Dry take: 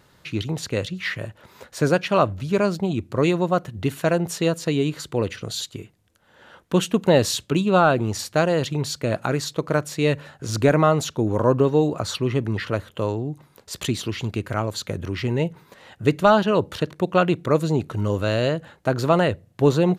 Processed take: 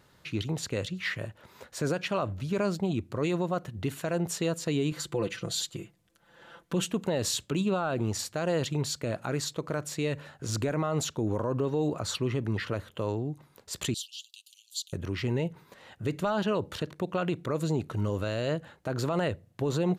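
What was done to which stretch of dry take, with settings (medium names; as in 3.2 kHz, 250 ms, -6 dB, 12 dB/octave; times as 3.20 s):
4.91–6.82 s: comb 5.9 ms, depth 76%
13.94–14.93 s: steep high-pass 2.9 kHz 96 dB/octave
whole clip: dynamic bell 7.5 kHz, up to +5 dB, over -53 dBFS, Q 5.2; peak limiter -14 dBFS; trim -5 dB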